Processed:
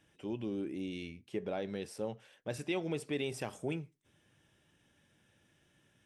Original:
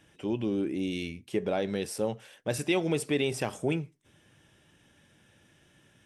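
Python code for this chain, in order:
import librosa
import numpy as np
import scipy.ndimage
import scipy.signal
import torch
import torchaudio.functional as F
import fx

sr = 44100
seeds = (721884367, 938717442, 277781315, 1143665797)

y = fx.high_shelf(x, sr, hz=8700.0, db=-10.0, at=(0.82, 3.13))
y = y * librosa.db_to_amplitude(-8.0)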